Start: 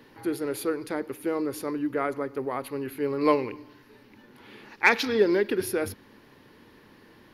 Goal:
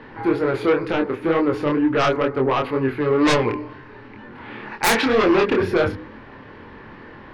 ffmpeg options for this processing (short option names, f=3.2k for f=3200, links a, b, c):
-filter_complex "[0:a]lowpass=1.7k,equalizer=f=300:w=0.49:g=-6.5,bandreject=f=61.86:t=h:w=4,bandreject=f=123.72:t=h:w=4,bandreject=f=185.58:t=h:w=4,bandreject=f=247.44:t=h:w=4,bandreject=f=309.3:t=h:w=4,bandreject=f=371.16:t=h:w=4,bandreject=f=433.02:t=h:w=4,bandreject=f=494.88:t=h:w=4,asplit=2[a][b];[b]aeval=exprs='0.299*sin(PI/2*7.94*val(0)/0.299)':c=same,volume=-7dB[c];[a][c]amix=inputs=2:normalize=0,flanger=delay=22.5:depth=4.6:speed=2.1,volume=5dB"